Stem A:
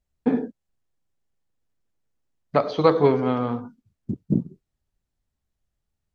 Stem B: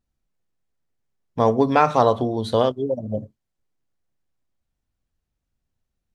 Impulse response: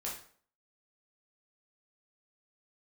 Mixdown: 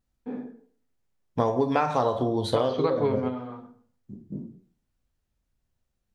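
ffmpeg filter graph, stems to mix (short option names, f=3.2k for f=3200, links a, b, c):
-filter_complex "[0:a]volume=-5dB,asplit=2[a][b];[b]volume=-9dB[c];[1:a]volume=-2.5dB,asplit=3[d][e][f];[e]volume=-3.5dB[g];[f]apad=whole_len=271210[h];[a][h]sidechaingate=range=-33dB:threshold=-36dB:ratio=16:detection=peak[i];[2:a]atrim=start_sample=2205[j];[c][g]amix=inputs=2:normalize=0[k];[k][j]afir=irnorm=-1:irlink=0[l];[i][d][l]amix=inputs=3:normalize=0,acompressor=threshold=-20dB:ratio=6"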